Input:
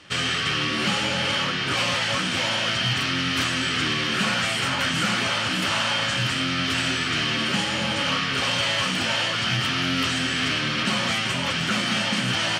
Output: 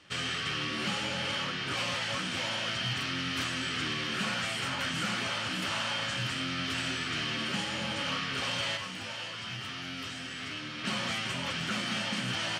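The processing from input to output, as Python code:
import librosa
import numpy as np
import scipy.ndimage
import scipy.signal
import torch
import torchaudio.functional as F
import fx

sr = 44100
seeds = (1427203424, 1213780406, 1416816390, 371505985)

y = fx.comb_fb(x, sr, f0_hz=100.0, decay_s=0.25, harmonics='all', damping=0.0, mix_pct=70, at=(8.76, 10.83), fade=0.02)
y = y * librosa.db_to_amplitude(-9.0)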